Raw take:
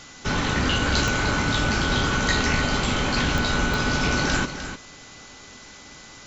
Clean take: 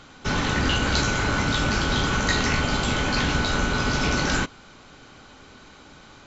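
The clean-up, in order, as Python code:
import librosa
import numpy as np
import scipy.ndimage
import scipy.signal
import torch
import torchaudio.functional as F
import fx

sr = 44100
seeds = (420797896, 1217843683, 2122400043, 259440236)

y = fx.fix_declick_ar(x, sr, threshold=10.0)
y = fx.notch(y, sr, hz=2000.0, q=30.0)
y = fx.noise_reduce(y, sr, print_start_s=5.35, print_end_s=5.85, reduce_db=6.0)
y = fx.fix_echo_inverse(y, sr, delay_ms=303, level_db=-10.0)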